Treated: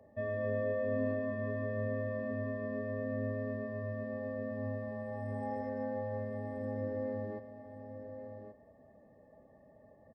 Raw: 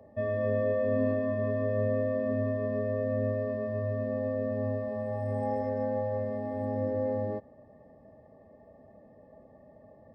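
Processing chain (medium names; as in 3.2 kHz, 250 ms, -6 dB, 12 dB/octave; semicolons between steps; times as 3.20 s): peaking EQ 1.7 kHz +5 dB 0.31 oct; on a send: delay 1128 ms -10.5 dB; on the sum: trim -6 dB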